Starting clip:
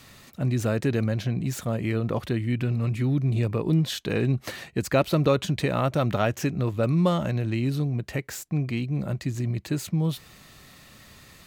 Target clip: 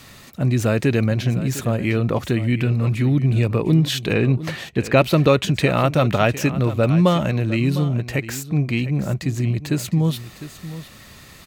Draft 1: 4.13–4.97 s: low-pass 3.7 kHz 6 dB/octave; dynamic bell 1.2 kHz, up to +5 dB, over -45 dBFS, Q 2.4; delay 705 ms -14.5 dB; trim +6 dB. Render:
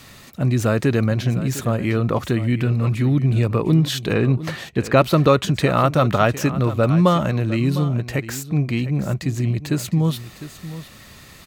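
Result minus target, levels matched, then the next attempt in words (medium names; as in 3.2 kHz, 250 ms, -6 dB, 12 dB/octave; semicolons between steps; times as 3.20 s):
1 kHz band +2.5 dB
4.13–4.97 s: low-pass 3.7 kHz 6 dB/octave; dynamic bell 2.5 kHz, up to +5 dB, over -45 dBFS, Q 2.4; delay 705 ms -14.5 dB; trim +6 dB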